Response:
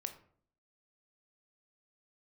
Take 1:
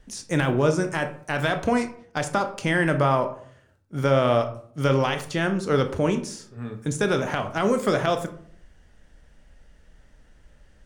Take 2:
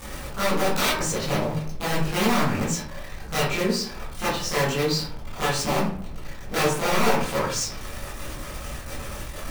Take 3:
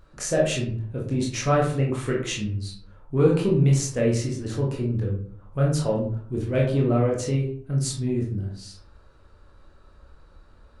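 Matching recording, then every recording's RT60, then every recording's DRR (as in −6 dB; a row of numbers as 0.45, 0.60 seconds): 1; 0.55, 0.55, 0.55 seconds; 6.5, −11.0, −3.5 decibels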